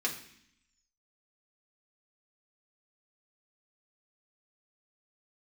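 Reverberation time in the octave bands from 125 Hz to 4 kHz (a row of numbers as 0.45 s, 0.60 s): 0.90 s, 1.0 s, 0.60 s, 0.65 s, 0.85 s, 0.85 s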